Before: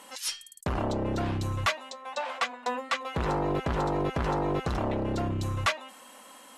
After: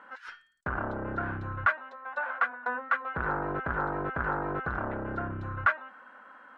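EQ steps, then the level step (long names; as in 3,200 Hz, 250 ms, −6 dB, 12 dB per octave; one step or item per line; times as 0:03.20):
low-pass with resonance 1,500 Hz, resonance Q 8.2
−6.5 dB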